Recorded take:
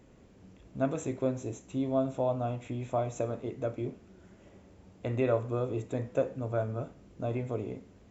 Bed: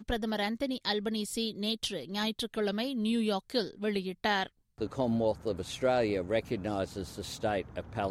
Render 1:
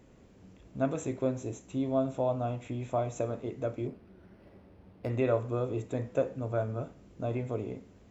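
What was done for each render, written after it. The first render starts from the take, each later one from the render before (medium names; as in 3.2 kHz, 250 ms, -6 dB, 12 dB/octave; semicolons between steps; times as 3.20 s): 3.87–5.10 s: decimation joined by straight lines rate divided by 6×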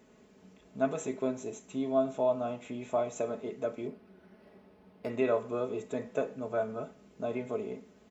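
high-pass 270 Hz 6 dB/octave; comb 4.7 ms, depth 61%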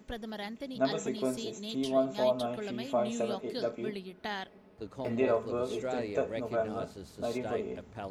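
add bed -8 dB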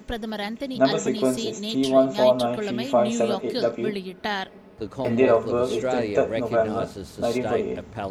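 trim +10 dB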